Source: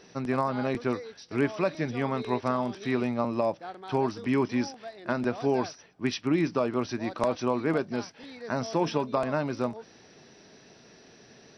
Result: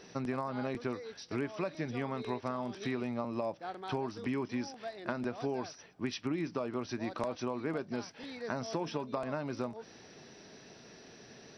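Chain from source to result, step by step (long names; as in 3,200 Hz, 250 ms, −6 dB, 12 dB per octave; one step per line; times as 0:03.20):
downward compressor 4 to 1, threshold −33 dBFS, peak gain reduction 11.5 dB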